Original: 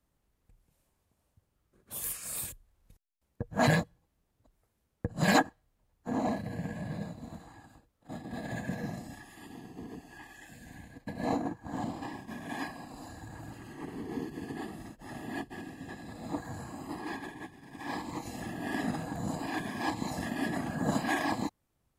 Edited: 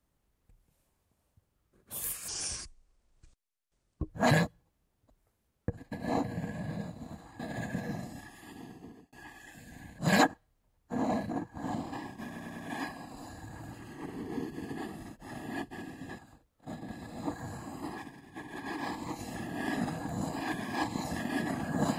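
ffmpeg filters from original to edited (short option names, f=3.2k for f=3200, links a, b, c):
-filter_complex "[0:a]asplit=16[a][b][c][d][e][f][g][h][i][j][k][l][m][n][o][p];[a]atrim=end=2.284[q];[b]atrim=start=2.28:end=3.46,asetpts=PTS-STARTPTS,asetrate=28665,aresample=44100,atrim=end_sample=80058,asetpts=PTS-STARTPTS[r];[c]atrim=start=3.456:end=5.142[s];[d]atrim=start=10.928:end=11.392[t];[e]atrim=start=6.448:end=7.612[u];[f]atrim=start=8.338:end=10.07,asetpts=PTS-STARTPTS,afade=t=out:st=1.272:d=0.46[v];[g]atrim=start=10.07:end=10.932,asetpts=PTS-STARTPTS,afade=t=in:d=0.004:c=hsin[w];[h]atrim=start=5.138:end=6.452[x];[i]atrim=start=11.388:end=12.462[y];[j]atrim=start=12.358:end=12.462[z];[k]atrim=start=12.358:end=12.462[aa];[l]atrim=start=12.358:end=15.982[ab];[m]atrim=start=7.608:end=8.342[ac];[n]atrim=start=15.978:end=17.042[ad];[o]atrim=start=17.038:end=17.852,asetpts=PTS-STARTPTS,areverse[ae];[p]atrim=start=17.848[af];[q][r]acrossfade=d=0.004:c1=hsin:c2=hsin[ag];[ag][s]acrossfade=d=0.004:c1=hsin:c2=hsin[ah];[ah][t]acrossfade=d=0.004:c1=hsin:c2=hsin[ai];[ai][u]acrossfade=d=0.004:c1=hsin:c2=hsin[aj];[v][w]concat=n=2:v=0:a=1[ak];[aj][ak]acrossfade=d=0.004:c1=hsin:c2=hsin[al];[al][x]acrossfade=d=0.004:c1=hsin:c2=hsin[am];[am][y]acrossfade=d=0.004:c1=hsin:c2=hsin[an];[an][z]acrossfade=d=0.004:c1=hsin:c2=hsin[ao];[ao][aa]acrossfade=d=0.004:c1=hsin:c2=hsin[ap];[ap][ab]acrossfade=d=0.004:c1=hsin:c2=hsin[aq];[aq][ac]acrossfade=d=0.004:c1=hsin:c2=hsin[ar];[ar][ad]acrossfade=d=0.004:c1=hsin:c2=hsin[as];[as][ae]acrossfade=d=0.004:c1=hsin:c2=hsin[at];[at][af]acrossfade=d=0.004:c1=hsin:c2=hsin"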